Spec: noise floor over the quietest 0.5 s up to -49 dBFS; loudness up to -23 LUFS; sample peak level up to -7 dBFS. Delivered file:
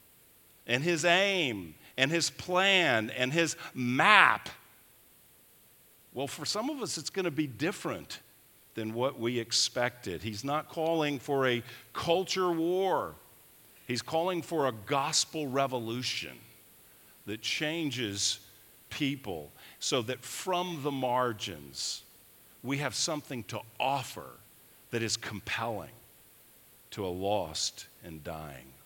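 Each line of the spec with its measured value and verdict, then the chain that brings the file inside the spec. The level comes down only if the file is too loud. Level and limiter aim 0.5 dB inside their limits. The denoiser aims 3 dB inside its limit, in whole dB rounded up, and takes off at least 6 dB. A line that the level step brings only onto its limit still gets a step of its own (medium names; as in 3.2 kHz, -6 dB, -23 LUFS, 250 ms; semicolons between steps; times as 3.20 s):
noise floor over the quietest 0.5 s -60 dBFS: pass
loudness -30.5 LUFS: pass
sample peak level -4.5 dBFS: fail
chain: peak limiter -7.5 dBFS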